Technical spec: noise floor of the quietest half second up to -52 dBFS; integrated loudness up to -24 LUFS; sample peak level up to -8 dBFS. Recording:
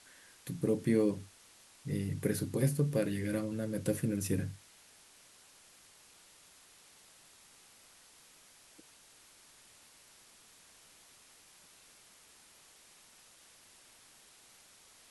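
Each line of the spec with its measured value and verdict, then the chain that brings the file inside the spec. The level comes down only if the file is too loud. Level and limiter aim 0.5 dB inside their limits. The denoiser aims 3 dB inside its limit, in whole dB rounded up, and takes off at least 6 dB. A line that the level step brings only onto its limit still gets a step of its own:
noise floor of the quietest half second -61 dBFS: OK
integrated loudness -34.0 LUFS: OK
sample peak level -17.5 dBFS: OK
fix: none

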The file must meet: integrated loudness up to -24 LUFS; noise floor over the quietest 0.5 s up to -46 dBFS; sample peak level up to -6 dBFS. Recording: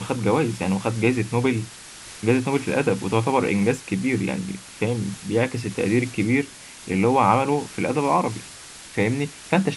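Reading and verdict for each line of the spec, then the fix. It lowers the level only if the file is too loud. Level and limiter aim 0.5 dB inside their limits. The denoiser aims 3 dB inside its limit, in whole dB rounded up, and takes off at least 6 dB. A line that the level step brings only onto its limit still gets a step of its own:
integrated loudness -23.0 LUFS: fail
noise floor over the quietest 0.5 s -41 dBFS: fail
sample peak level -2.5 dBFS: fail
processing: denoiser 7 dB, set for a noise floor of -41 dBFS; gain -1.5 dB; limiter -6.5 dBFS

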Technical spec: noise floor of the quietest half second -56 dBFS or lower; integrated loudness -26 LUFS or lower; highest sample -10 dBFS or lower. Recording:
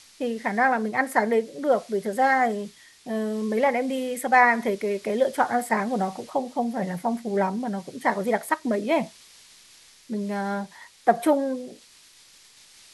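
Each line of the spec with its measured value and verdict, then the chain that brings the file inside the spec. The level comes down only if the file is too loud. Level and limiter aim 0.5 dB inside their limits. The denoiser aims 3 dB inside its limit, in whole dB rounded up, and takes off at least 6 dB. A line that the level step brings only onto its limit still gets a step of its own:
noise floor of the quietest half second -53 dBFS: fail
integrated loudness -25.0 LUFS: fail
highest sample -5.5 dBFS: fail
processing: denoiser 6 dB, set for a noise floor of -53 dBFS; gain -1.5 dB; limiter -10.5 dBFS

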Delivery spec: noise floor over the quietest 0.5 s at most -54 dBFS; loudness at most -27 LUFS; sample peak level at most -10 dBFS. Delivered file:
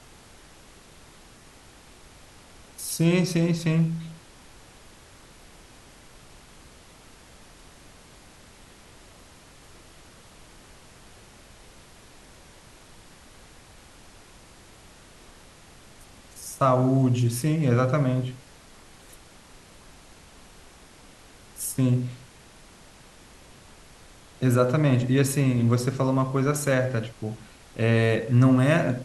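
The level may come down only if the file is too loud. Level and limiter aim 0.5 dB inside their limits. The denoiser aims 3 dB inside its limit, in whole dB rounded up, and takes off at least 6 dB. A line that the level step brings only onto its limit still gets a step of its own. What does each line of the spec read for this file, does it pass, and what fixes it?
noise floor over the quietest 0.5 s -50 dBFS: fail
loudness -23.5 LUFS: fail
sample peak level -8.5 dBFS: fail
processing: denoiser 6 dB, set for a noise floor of -50 dBFS; gain -4 dB

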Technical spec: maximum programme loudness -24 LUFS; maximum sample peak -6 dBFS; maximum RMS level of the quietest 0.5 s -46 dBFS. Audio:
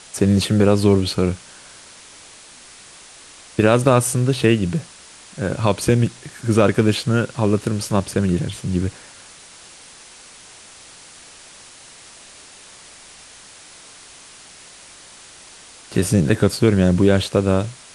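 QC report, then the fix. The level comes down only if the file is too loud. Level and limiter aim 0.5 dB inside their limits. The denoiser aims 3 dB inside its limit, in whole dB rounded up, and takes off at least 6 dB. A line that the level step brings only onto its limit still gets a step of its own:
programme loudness -18.5 LUFS: fail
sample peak -1.5 dBFS: fail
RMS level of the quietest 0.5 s -43 dBFS: fail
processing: gain -6 dB

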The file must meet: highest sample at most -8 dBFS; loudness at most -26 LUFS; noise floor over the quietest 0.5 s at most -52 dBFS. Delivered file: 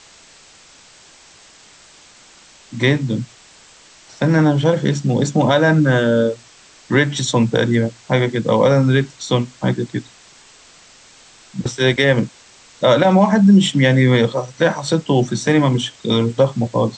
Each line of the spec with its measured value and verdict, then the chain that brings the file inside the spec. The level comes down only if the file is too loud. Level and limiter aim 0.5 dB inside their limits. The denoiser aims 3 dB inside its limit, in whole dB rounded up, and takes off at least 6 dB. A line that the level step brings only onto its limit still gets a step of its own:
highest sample -2.5 dBFS: fail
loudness -16.5 LUFS: fail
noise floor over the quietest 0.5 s -46 dBFS: fail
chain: gain -10 dB

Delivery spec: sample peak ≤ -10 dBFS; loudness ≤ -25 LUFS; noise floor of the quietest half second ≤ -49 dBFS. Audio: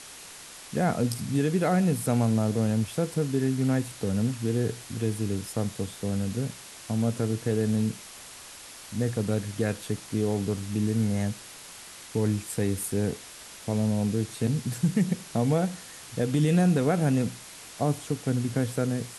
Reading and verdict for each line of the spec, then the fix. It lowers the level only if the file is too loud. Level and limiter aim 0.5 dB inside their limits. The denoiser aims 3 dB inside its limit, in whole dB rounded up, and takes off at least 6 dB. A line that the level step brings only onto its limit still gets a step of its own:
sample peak -12.5 dBFS: OK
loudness -27.5 LUFS: OK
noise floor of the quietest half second -45 dBFS: fail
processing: denoiser 7 dB, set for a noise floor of -45 dBFS

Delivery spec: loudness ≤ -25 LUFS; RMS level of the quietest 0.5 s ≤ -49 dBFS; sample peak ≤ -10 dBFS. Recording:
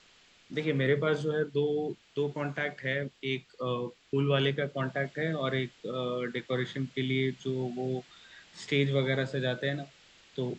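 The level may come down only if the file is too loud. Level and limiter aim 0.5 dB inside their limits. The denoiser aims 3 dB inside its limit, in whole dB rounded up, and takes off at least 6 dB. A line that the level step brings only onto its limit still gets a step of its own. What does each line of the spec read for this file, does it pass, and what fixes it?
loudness -31.5 LUFS: OK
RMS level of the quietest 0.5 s -61 dBFS: OK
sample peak -14.5 dBFS: OK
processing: none

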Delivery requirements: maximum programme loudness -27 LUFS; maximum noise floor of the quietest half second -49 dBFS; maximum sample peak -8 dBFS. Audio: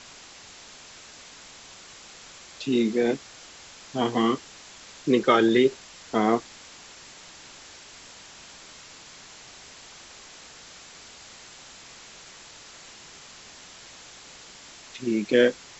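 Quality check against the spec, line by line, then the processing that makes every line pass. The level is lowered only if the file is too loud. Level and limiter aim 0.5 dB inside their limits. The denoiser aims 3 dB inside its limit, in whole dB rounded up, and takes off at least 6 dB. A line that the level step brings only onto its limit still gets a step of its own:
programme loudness -24.0 LUFS: fail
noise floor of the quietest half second -47 dBFS: fail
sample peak -5.5 dBFS: fail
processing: gain -3.5 dB

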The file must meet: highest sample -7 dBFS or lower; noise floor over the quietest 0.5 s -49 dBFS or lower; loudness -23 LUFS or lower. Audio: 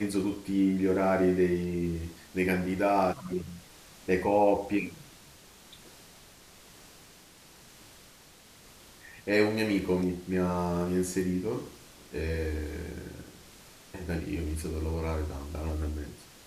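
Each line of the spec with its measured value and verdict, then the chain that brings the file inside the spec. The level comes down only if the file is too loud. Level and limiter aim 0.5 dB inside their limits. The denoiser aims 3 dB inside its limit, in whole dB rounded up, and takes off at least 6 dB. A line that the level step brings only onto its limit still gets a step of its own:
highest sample -11.5 dBFS: OK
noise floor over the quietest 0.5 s -55 dBFS: OK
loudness -30.0 LUFS: OK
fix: none

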